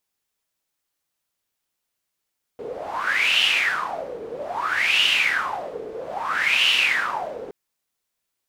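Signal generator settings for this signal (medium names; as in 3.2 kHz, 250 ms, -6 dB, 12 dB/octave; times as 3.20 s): wind-like swept noise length 4.92 s, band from 440 Hz, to 2.9 kHz, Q 8.8, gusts 3, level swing 15 dB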